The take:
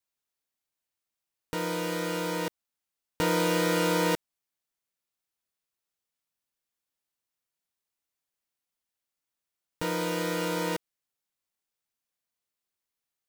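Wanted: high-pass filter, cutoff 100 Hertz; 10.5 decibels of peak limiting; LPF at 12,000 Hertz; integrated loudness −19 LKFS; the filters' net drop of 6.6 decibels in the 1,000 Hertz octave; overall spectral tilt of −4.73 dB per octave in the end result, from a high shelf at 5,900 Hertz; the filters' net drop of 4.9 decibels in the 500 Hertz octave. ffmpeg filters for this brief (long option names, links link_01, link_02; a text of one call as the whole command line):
ffmpeg -i in.wav -af "highpass=100,lowpass=12000,equalizer=frequency=500:width_type=o:gain=-4,equalizer=frequency=1000:width_type=o:gain=-6.5,highshelf=frequency=5900:gain=-8,volume=18.5dB,alimiter=limit=-9dB:level=0:latency=1" out.wav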